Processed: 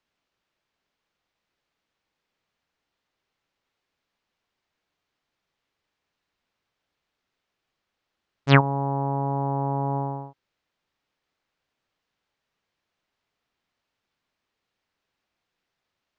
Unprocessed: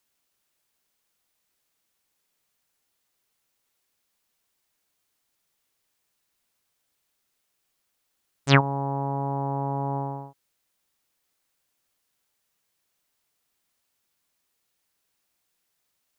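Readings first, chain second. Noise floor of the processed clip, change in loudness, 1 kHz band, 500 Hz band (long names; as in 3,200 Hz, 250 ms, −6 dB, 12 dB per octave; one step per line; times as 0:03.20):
−83 dBFS, +2.0 dB, +1.5 dB, +2.0 dB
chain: high-frequency loss of the air 190 metres
level +2.5 dB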